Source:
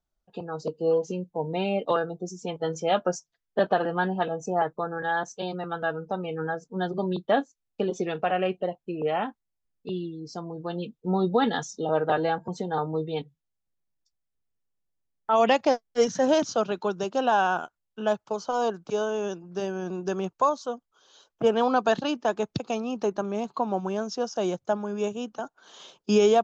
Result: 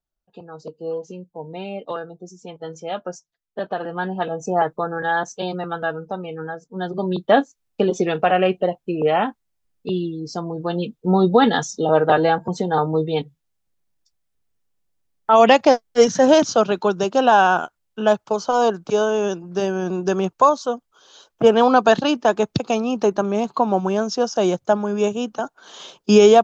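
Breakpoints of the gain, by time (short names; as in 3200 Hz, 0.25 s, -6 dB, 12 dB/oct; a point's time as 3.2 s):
3.62 s -4 dB
4.51 s +6 dB
5.58 s +6 dB
6.59 s -1 dB
7.37 s +8.5 dB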